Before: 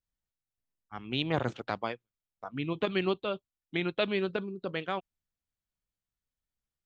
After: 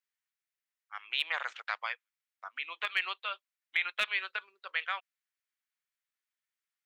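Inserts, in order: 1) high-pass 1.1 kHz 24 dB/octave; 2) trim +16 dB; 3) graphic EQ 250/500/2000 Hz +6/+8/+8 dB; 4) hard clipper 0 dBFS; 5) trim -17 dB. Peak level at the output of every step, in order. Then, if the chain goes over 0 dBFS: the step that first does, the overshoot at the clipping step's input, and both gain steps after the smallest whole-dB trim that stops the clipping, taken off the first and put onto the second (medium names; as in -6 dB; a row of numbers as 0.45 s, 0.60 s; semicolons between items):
-17.5 dBFS, -1.5 dBFS, +3.5 dBFS, 0.0 dBFS, -17.0 dBFS; step 3, 3.5 dB; step 2 +12 dB, step 5 -13 dB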